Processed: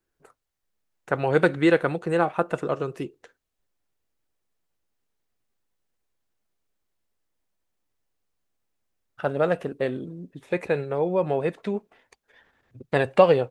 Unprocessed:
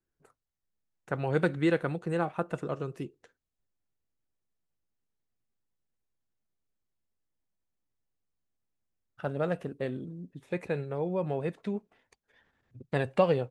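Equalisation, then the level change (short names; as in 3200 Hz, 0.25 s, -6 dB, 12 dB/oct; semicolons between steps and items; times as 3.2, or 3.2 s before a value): tone controls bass -13 dB, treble -2 dB; low shelf 160 Hz +9.5 dB; +8.5 dB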